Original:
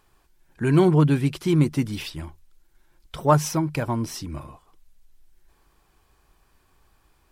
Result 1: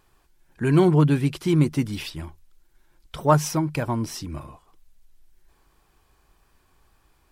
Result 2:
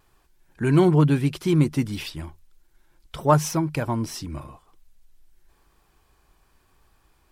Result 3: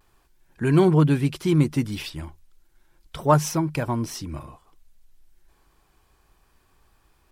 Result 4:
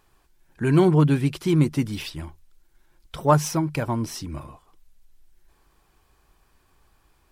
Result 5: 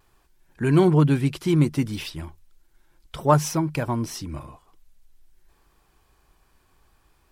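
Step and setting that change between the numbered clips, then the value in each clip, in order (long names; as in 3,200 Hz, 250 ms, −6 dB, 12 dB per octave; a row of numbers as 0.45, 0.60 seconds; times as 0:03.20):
pitch vibrato, speed: 1.9, 0.91, 0.32, 9.6, 0.58 Hertz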